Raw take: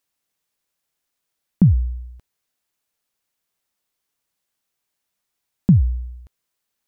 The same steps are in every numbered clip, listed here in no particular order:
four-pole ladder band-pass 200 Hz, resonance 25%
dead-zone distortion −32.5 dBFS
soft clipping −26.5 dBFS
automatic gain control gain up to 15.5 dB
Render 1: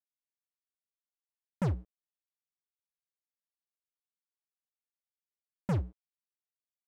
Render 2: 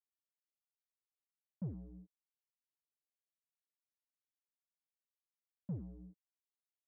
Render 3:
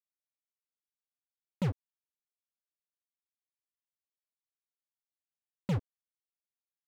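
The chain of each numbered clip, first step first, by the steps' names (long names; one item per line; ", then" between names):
four-pole ladder band-pass, then automatic gain control, then dead-zone distortion, then soft clipping
dead-zone distortion, then automatic gain control, then soft clipping, then four-pole ladder band-pass
four-pole ladder band-pass, then dead-zone distortion, then automatic gain control, then soft clipping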